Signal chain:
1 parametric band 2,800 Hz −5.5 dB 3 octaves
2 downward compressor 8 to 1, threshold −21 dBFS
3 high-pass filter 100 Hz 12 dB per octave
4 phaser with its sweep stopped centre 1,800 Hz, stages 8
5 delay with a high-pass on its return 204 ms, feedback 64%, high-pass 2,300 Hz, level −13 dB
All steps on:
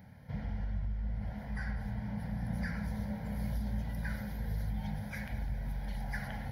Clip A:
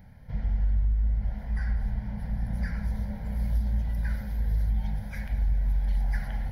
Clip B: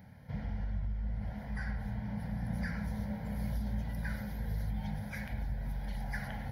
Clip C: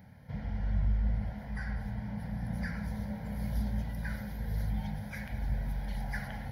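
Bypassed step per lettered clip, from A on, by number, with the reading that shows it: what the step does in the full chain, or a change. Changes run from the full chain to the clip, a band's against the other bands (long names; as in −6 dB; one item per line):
3, 125 Hz band +7.5 dB
5, echo-to-direct ratio −16.5 dB to none audible
2, change in crest factor +2.5 dB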